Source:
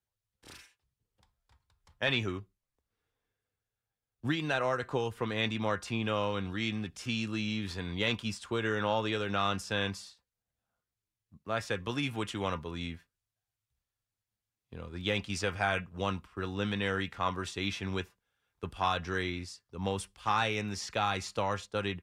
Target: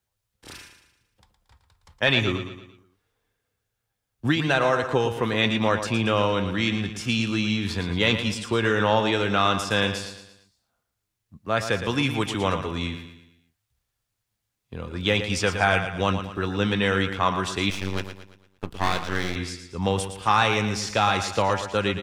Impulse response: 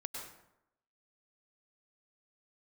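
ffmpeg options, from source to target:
-filter_complex "[0:a]aecho=1:1:114|228|342|456|570:0.335|0.147|0.0648|0.0285|0.0126,asettb=1/sr,asplit=3[link_01][link_02][link_03];[link_01]atrim=end=17.704[link_04];[link_02]atrim=start=17.7:end=19.36,asetpts=PTS-STARTPTS,afade=type=in:duration=0.004:curve=qsin,afade=type=out:start_time=1.656:duration=0.004:curve=qsin,aeval=exprs='max(val(0),0)':channel_layout=same[link_05];[link_03]atrim=start=19.356[link_06];[link_04][link_05]acrossfade=duration=0.004:curve1=hsin:curve2=qsin[link_07];[link_07][link_06]acrossfade=duration=0.004:curve1=qsin:curve2=hsin,volume=9dB"

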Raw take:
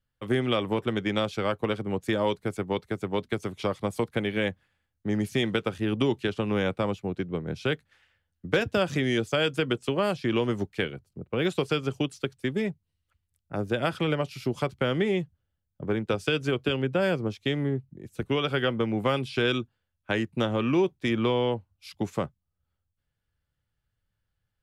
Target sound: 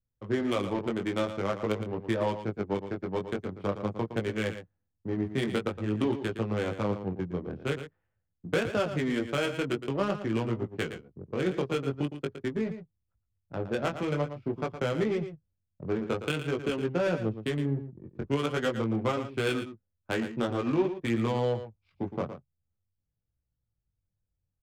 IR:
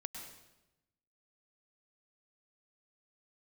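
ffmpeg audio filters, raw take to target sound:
-af "flanger=delay=17.5:depth=4.6:speed=0.47,adynamicsmooth=sensitivity=3.5:basefreq=660,aecho=1:1:114:0.299"

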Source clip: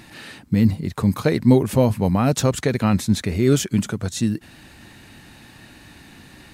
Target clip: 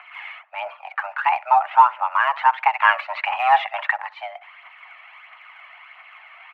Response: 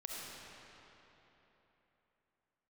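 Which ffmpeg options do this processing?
-filter_complex "[0:a]asplit=3[link_01][link_02][link_03];[link_01]afade=type=out:start_time=2.8:duration=0.02[link_04];[link_02]acontrast=59,afade=type=in:start_time=2.8:duration=0.02,afade=type=out:start_time=3.98:duration=0.02[link_05];[link_03]afade=type=in:start_time=3.98:duration=0.02[link_06];[link_04][link_05][link_06]amix=inputs=3:normalize=0,asplit=2[link_07][link_08];[link_08]adelay=64,lowpass=frequency=1200:poles=1,volume=-17.5dB,asplit=2[link_09][link_10];[link_10]adelay=64,lowpass=frequency=1200:poles=1,volume=0.3,asplit=2[link_11][link_12];[link_12]adelay=64,lowpass=frequency=1200:poles=1,volume=0.3[link_13];[link_07][link_09][link_11][link_13]amix=inputs=4:normalize=0,highpass=frequency=480:width_type=q:width=0.5412,highpass=frequency=480:width_type=q:width=1.307,lowpass=frequency=2300:width_type=q:width=0.5176,lowpass=frequency=2300:width_type=q:width=0.7071,lowpass=frequency=2300:width_type=q:width=1.932,afreqshift=390,aphaser=in_gain=1:out_gain=1:delay=1.8:decay=0.43:speed=1.5:type=triangular,volume=5.5dB"

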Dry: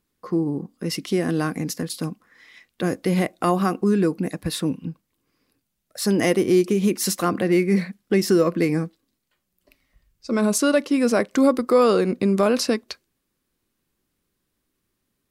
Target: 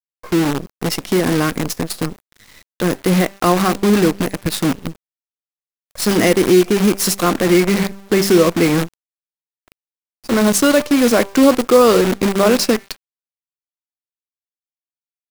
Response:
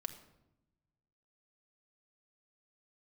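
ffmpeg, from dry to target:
-af "bandreject=frequency=196.9:width_type=h:width=4,bandreject=frequency=393.8:width_type=h:width=4,bandreject=frequency=590.7:width_type=h:width=4,bandreject=frequency=787.6:width_type=h:width=4,bandreject=frequency=984.5:width_type=h:width=4,bandreject=frequency=1181.4:width_type=h:width=4,bandreject=frequency=1378.3:width_type=h:width=4,bandreject=frequency=1575.2:width_type=h:width=4,bandreject=frequency=1772.1:width_type=h:width=4,bandreject=frequency=1969:width_type=h:width=4,bandreject=frequency=2165.9:width_type=h:width=4,bandreject=frequency=2362.8:width_type=h:width=4,bandreject=frequency=2559.7:width_type=h:width=4,acrusher=bits=5:dc=4:mix=0:aa=0.000001,volume=6dB"

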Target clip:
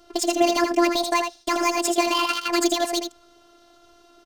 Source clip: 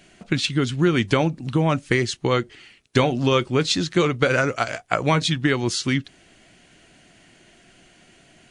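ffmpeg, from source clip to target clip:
ffmpeg -i in.wav -filter_complex "[0:a]acrossover=split=2900[link_01][link_02];[link_02]acompressor=threshold=-45dB:ratio=4:attack=1:release=60[link_03];[link_01][link_03]amix=inputs=2:normalize=0,equalizer=frequency=6100:width_type=o:width=2.2:gain=12,alimiter=limit=-9.5dB:level=0:latency=1:release=76,adynamicsmooth=sensitivity=3:basefreq=1200,aecho=1:1:160:0.473,afftfilt=real='hypot(re,im)*cos(PI*b)':imag='0':win_size=1024:overlap=0.75,asetrate=88200,aresample=44100,volume=3.5dB" out.wav

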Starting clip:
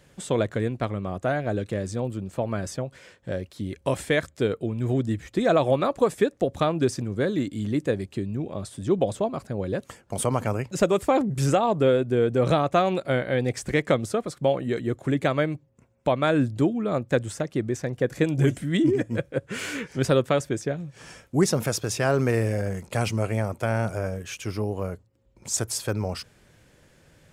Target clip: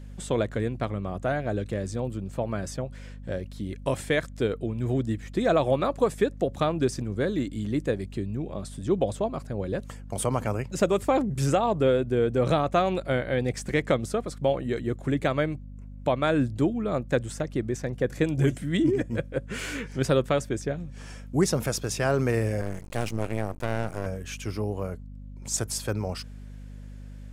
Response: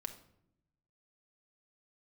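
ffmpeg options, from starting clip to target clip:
-filter_complex "[0:a]aeval=exprs='val(0)+0.0126*(sin(2*PI*50*n/s)+sin(2*PI*2*50*n/s)/2+sin(2*PI*3*50*n/s)/3+sin(2*PI*4*50*n/s)/4+sin(2*PI*5*50*n/s)/5)':channel_layout=same,asettb=1/sr,asplit=3[link_01][link_02][link_03];[link_01]atrim=end=22.614[link_04];[link_02]atrim=start=22.61:end=24.06,asetpts=PTS-STARTPTS,afade=type=in:duration=0.004:curve=qsin,afade=type=out:start_time=1.446:duration=0.004:curve=qsin,aeval=exprs='max(val(0),0)':channel_layout=same[link_05];[link_03]atrim=start=24.056[link_06];[link_04][link_05]acrossfade=duration=0.004:curve1=hsin:curve2=qsin[link_07];[link_07][link_06]acrossfade=duration=0.004:curve1=qsin:curve2=hsin,volume=-2dB"

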